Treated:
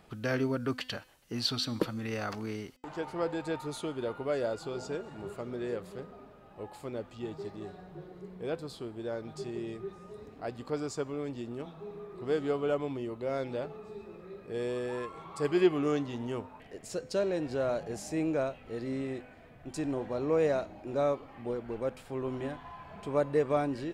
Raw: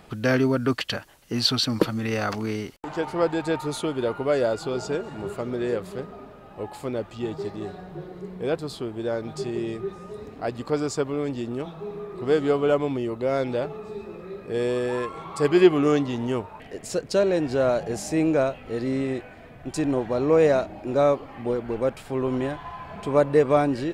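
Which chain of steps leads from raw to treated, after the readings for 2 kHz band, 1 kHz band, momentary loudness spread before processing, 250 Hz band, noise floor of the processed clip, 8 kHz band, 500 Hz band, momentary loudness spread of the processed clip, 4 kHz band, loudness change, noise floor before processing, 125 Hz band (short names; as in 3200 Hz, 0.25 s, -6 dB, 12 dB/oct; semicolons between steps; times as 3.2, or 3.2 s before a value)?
-9.0 dB, -9.0 dB, 15 LU, -9.0 dB, -54 dBFS, -9.0 dB, -9.0 dB, 15 LU, -9.0 dB, -9.0 dB, -45 dBFS, -9.0 dB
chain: de-hum 254.2 Hz, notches 36; gain -9 dB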